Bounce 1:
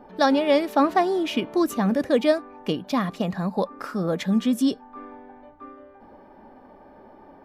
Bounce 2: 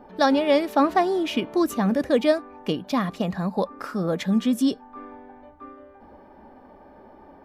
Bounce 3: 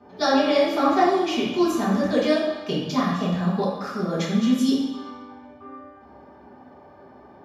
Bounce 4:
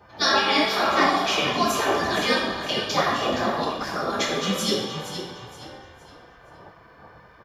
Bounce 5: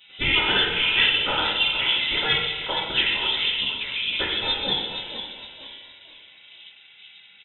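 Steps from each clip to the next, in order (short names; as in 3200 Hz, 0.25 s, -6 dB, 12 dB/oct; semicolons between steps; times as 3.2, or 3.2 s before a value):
bell 67 Hz +9 dB 0.29 oct
HPF 89 Hz; reverb RT60 1.1 s, pre-delay 3 ms, DRR -8.5 dB; gain -5.5 dB
spectral gate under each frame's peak -10 dB weak; frequency-shifting echo 0.468 s, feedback 34%, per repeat -38 Hz, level -10 dB; gain +7 dB
inverted band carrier 3800 Hz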